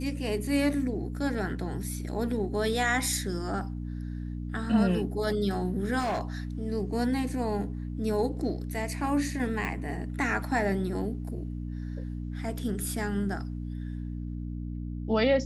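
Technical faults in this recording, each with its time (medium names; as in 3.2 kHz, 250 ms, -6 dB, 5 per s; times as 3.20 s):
hum 60 Hz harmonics 5 -35 dBFS
5.99–6.21 s: clipped -26 dBFS
9.65 s: pop -20 dBFS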